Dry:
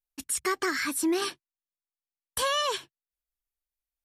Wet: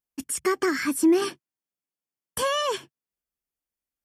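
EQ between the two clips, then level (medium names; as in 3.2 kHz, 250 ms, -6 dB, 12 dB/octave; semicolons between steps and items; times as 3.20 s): high-pass 80 Hz 6 dB/octave; peaking EQ 200 Hz +10 dB 2.7 oct; band-stop 3.9 kHz, Q 5.1; 0.0 dB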